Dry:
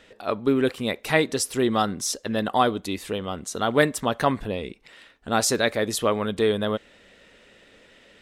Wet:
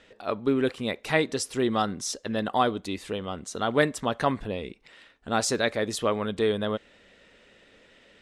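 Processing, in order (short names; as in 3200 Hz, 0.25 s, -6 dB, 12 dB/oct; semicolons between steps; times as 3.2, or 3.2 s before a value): Bessel low-pass 8400 Hz, order 4; gain -3 dB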